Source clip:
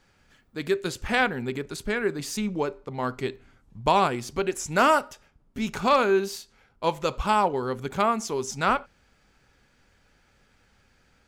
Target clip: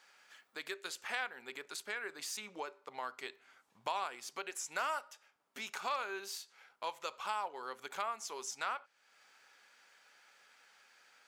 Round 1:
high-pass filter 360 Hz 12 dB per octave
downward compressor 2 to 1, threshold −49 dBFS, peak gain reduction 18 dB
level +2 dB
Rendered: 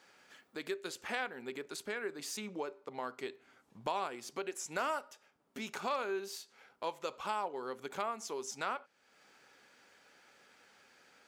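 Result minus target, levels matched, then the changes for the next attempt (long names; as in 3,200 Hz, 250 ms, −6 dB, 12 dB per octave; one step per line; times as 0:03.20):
500 Hz band +5.5 dB
change: high-pass filter 830 Hz 12 dB per octave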